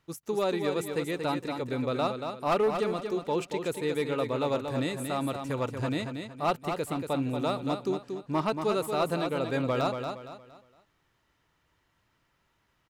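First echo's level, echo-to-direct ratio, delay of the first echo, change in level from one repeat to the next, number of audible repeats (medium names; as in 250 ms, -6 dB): -6.5 dB, -6.0 dB, 232 ms, -9.5 dB, 4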